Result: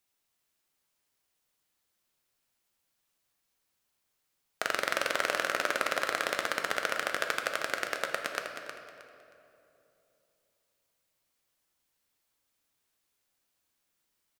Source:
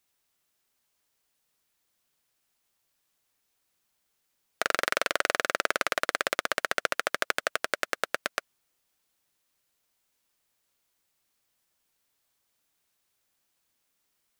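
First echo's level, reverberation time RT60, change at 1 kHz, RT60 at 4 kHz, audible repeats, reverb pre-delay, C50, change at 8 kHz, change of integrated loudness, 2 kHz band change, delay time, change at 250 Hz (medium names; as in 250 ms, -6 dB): -8.5 dB, 2.9 s, -2.0 dB, 1.8 s, 3, 9 ms, 4.0 dB, -3.0 dB, -2.5 dB, -2.5 dB, 314 ms, -1.5 dB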